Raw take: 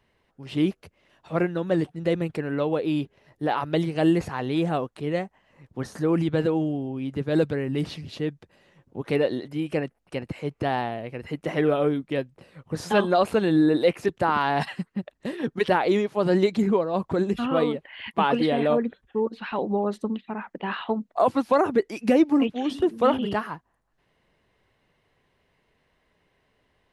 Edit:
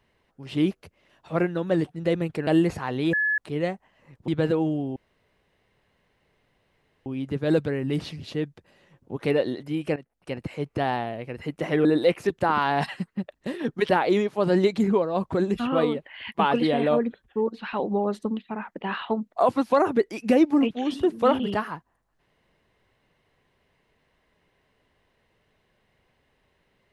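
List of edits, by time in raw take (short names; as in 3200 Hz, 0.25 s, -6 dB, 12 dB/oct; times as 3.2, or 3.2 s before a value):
2.47–3.98 cut
4.64–4.89 bleep 1710 Hz -20.5 dBFS
5.79–6.23 cut
6.91 insert room tone 2.10 s
9.81–10.24 fade in, from -15.5 dB
11.7–13.64 cut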